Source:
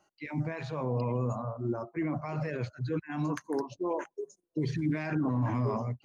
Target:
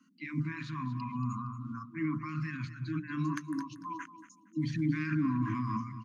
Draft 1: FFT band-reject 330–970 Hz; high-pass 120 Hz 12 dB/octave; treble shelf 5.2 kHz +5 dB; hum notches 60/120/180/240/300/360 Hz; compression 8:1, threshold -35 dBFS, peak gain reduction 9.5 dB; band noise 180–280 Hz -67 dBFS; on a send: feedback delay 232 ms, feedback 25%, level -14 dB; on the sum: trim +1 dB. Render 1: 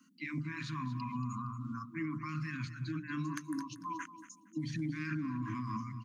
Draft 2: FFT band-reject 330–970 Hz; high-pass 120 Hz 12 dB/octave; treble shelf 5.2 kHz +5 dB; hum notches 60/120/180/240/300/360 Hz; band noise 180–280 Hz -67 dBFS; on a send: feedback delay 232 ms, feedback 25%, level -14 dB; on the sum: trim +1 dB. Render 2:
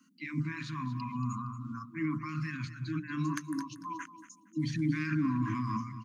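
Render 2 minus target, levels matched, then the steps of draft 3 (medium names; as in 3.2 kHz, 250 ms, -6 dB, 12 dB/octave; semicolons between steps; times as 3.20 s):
8 kHz band +6.0 dB
FFT band-reject 330–970 Hz; high-pass 120 Hz 12 dB/octave; treble shelf 5.2 kHz -5 dB; hum notches 60/120/180/240/300/360 Hz; band noise 180–280 Hz -67 dBFS; on a send: feedback delay 232 ms, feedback 25%, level -14 dB; on the sum: trim +1 dB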